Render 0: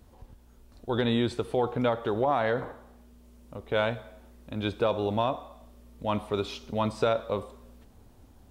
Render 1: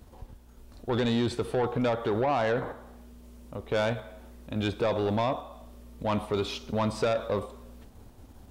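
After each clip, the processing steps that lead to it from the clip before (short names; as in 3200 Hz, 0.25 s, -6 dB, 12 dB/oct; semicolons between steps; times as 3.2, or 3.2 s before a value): in parallel at -1 dB: level quantiser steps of 11 dB; on the sum: soft clip -20.5 dBFS, distortion -13 dB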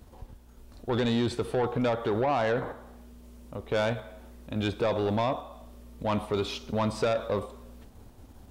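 nothing audible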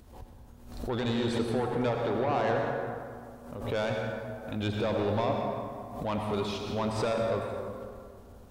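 on a send at -1.5 dB: reverb RT60 2.2 s, pre-delay 77 ms; on the sum: backwards sustainer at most 72 dB/s; gain -4 dB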